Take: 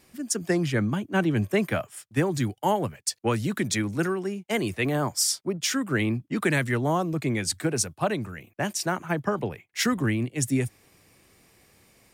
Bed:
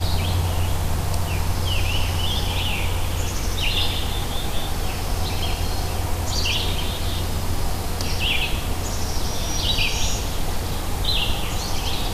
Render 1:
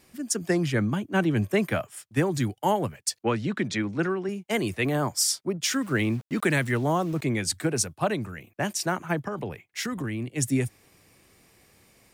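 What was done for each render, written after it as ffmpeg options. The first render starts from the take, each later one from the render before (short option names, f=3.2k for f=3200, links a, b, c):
-filter_complex "[0:a]asettb=1/sr,asplit=3[a][b][c];[a]atrim=end=3.234[d];[b]atrim=start=3.23:end=4.29,asetpts=PTS-STARTPTS,afade=t=in:d=0.004:c=qsin,afade=t=out:st=1.056:d=0.004:c=qsin,highpass=120,lowpass=4k[e];[c]atrim=start=4.286[f];[d][e]acrossfade=d=0.004:c1=hsin:c2=qsin[g];[g][f]acrossfade=d=0.004:c1=qsin:c2=hsin,asettb=1/sr,asplit=3[h][i][j];[h]atrim=end=5.734[k];[i]atrim=start=5.73:end=7.23,asetpts=PTS-STARTPTS,afade=t=in:d=0.004:c=qsin,afade=t=out:st=1.496:d=0.004:c=qsin,aeval=exprs='val(0)*gte(abs(val(0)),0.0075)':c=same[l];[j]atrim=start=7.226[m];[k][l]acrossfade=d=0.004:c1=hsin:c2=qsin[n];[n][m]acrossfade=d=0.004:c1=qsin:c2=hsin,asettb=1/sr,asplit=3[o][p][q];[o]atrim=end=9.244[r];[p]atrim=start=9.24:end=10.27,asetpts=PTS-STARTPTS,afade=t=in:d=0.004:c=qsin,afade=t=out:st=1.026:d=0.004:c=qsin,acompressor=threshold=-27dB:ratio=5:attack=3.2:release=140:knee=1:detection=peak[s];[q]atrim=start=10.266[t];[r][s]acrossfade=d=0.004:c1=hsin:c2=qsin[u];[u][t]acrossfade=d=0.004:c1=qsin:c2=hsin"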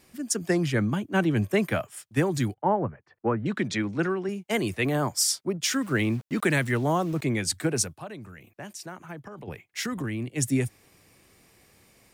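-filter_complex "[0:a]asettb=1/sr,asplit=3[a][b][c];[a]atrim=end=2.544[d];[b]atrim=start=2.54:end=3.46,asetpts=PTS-STARTPTS,afade=t=in:d=0.004:c=qsin,afade=t=out:st=0.916:d=0.004:c=qsin,lowpass=f=1.6k:w=0.5412,lowpass=f=1.6k:w=1.3066[e];[c]atrim=start=3.456[f];[d][e]acrossfade=d=0.004:c1=hsin:c2=qsin[g];[g][f]acrossfade=d=0.004:c1=qsin:c2=hsin,asettb=1/sr,asplit=3[h][i][j];[h]atrim=end=7.954[k];[i]atrim=start=7.95:end=9.48,asetpts=PTS-STARTPTS,afade=t=in:d=0.004:c=qsin,afade=t=out:st=1.526:d=0.004:c=qsin,acompressor=threshold=-46dB:ratio=2:attack=3.2:release=140:knee=1:detection=peak[l];[j]atrim=start=9.476[m];[k][l]acrossfade=d=0.004:c1=hsin:c2=qsin[n];[n][m]acrossfade=d=0.004:c1=qsin:c2=hsin"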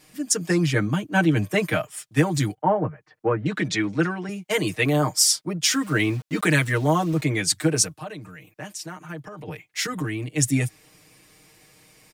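-af "equalizer=f=5.1k:w=0.39:g=3.5,aecho=1:1:6.5:0.96"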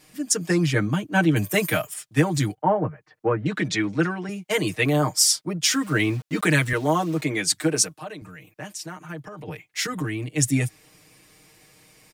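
-filter_complex "[0:a]asettb=1/sr,asplit=3[a][b][c];[a]atrim=end=1.364[d];[b]atrim=start=1.36:end=1.94,asetpts=PTS-STARTPTS,afade=t=in:d=0.004:c=qsin,afade=t=out:st=0.576:d=0.004:c=qsin,aemphasis=mode=production:type=50fm[e];[c]atrim=start=1.936[f];[d][e]acrossfade=d=0.004:c1=hsin:c2=qsin[g];[g][f]acrossfade=d=0.004:c1=qsin:c2=hsin,asettb=1/sr,asplit=3[h][i][j];[h]atrim=end=6.734[k];[i]atrim=start=6.73:end=8.22,asetpts=PTS-STARTPTS,afade=t=in:d=0.004:c=qsin,afade=t=out:st=1.486:d=0.004:c=qsin,highpass=180[l];[j]atrim=start=8.216[m];[k][l]acrossfade=d=0.004:c1=hsin:c2=qsin[n];[n][m]acrossfade=d=0.004:c1=qsin:c2=hsin"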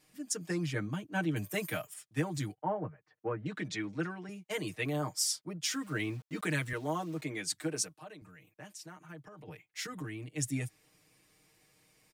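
-af "volume=-13dB"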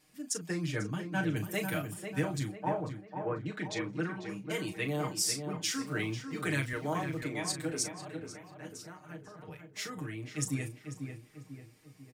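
-filter_complex "[0:a]asplit=2[a][b];[b]adelay=36,volume=-9dB[c];[a][c]amix=inputs=2:normalize=0,asplit=2[d][e];[e]adelay=494,lowpass=f=2.1k:p=1,volume=-6.5dB,asplit=2[f][g];[g]adelay=494,lowpass=f=2.1k:p=1,volume=0.48,asplit=2[h][i];[i]adelay=494,lowpass=f=2.1k:p=1,volume=0.48,asplit=2[j][k];[k]adelay=494,lowpass=f=2.1k:p=1,volume=0.48,asplit=2[l][m];[m]adelay=494,lowpass=f=2.1k:p=1,volume=0.48,asplit=2[n][o];[o]adelay=494,lowpass=f=2.1k:p=1,volume=0.48[p];[d][f][h][j][l][n][p]amix=inputs=7:normalize=0"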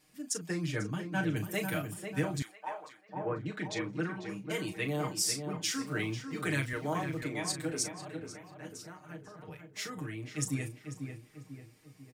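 -filter_complex "[0:a]asettb=1/sr,asplit=3[a][b][c];[a]atrim=end=2.424[d];[b]atrim=start=2.42:end=3.09,asetpts=PTS-STARTPTS,afade=t=in:d=0.004:c=qsin,afade=t=out:st=0.666:d=0.004:c=qsin,highpass=1k[e];[c]atrim=start=3.086[f];[d][e]acrossfade=d=0.004:c1=hsin:c2=qsin[g];[g][f]acrossfade=d=0.004:c1=qsin:c2=hsin"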